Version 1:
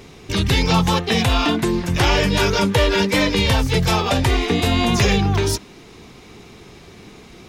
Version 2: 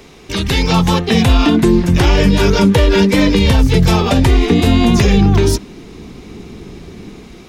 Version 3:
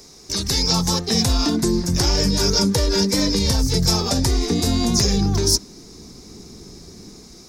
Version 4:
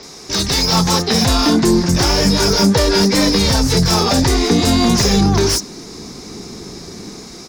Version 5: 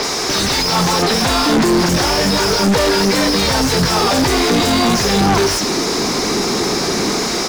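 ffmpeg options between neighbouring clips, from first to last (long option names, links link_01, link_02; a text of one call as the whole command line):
ffmpeg -i in.wav -filter_complex "[0:a]equalizer=frequency=110:width=1.5:gain=-7,acrossover=split=350|1500[link_01][link_02][link_03];[link_01]dynaudnorm=framelen=370:gausssize=5:maxgain=13.5dB[link_04];[link_04][link_02][link_03]amix=inputs=3:normalize=0,alimiter=level_in=3.5dB:limit=-1dB:release=50:level=0:latency=1,volume=-1dB" out.wav
ffmpeg -i in.wav -af "highshelf=frequency=3900:width_type=q:width=3:gain=10,volume=-9dB" out.wav
ffmpeg -i in.wav -filter_complex "[0:a]bass=frequency=250:gain=6,treble=frequency=4000:gain=3,asplit=2[link_01][link_02];[link_02]highpass=frequency=720:poles=1,volume=21dB,asoftclip=type=tanh:threshold=-1dB[link_03];[link_01][link_03]amix=inputs=2:normalize=0,lowpass=frequency=2800:poles=1,volume=-6dB,acrossover=split=5400[link_04][link_05];[link_05]adelay=30[link_06];[link_04][link_06]amix=inputs=2:normalize=0" out.wav
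ffmpeg -i in.wav -filter_complex "[0:a]crystalizer=i=1:c=0,asplit=2[link_01][link_02];[link_02]highpass=frequency=720:poles=1,volume=36dB,asoftclip=type=tanh:threshold=-1.5dB[link_03];[link_01][link_03]amix=inputs=2:normalize=0,lowpass=frequency=1500:poles=1,volume=-6dB,asoftclip=type=tanh:threshold=-9.5dB" out.wav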